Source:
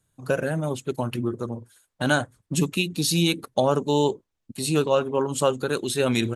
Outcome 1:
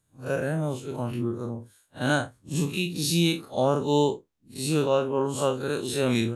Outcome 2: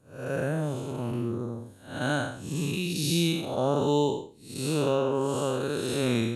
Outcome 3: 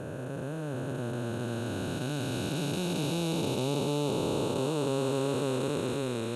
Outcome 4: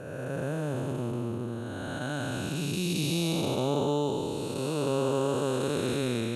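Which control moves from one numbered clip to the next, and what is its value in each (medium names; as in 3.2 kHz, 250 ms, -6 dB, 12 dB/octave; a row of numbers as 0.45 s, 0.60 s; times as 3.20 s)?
spectral blur, width: 88 ms, 236 ms, 1820 ms, 661 ms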